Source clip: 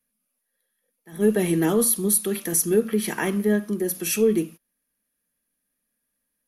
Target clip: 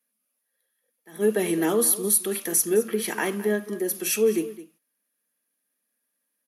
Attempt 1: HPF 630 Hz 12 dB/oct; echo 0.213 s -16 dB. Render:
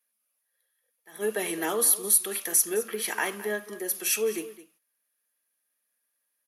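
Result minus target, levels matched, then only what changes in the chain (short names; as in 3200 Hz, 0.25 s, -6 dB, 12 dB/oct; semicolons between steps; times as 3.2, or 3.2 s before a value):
250 Hz band -8.5 dB
change: HPF 290 Hz 12 dB/oct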